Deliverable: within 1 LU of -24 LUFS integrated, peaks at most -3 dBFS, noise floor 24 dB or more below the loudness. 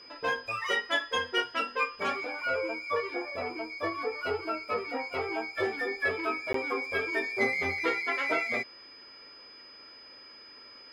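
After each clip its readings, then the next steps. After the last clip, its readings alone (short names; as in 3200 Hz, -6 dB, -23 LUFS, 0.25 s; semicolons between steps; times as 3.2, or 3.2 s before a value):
dropouts 1; longest dropout 13 ms; steady tone 5000 Hz; tone level -49 dBFS; loudness -31.0 LUFS; peak -15.0 dBFS; loudness target -24.0 LUFS
-> interpolate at 6.53, 13 ms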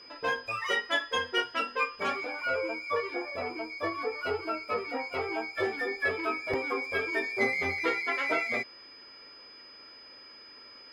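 dropouts 0; steady tone 5000 Hz; tone level -49 dBFS
-> notch 5000 Hz, Q 30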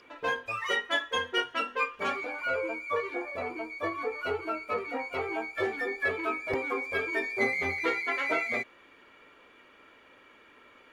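steady tone none; loudness -31.0 LUFS; peak -15.0 dBFS; loudness target -24.0 LUFS
-> gain +7 dB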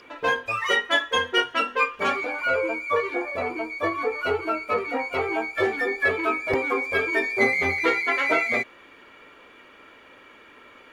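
loudness -24.0 LUFS; peak -8.0 dBFS; noise floor -50 dBFS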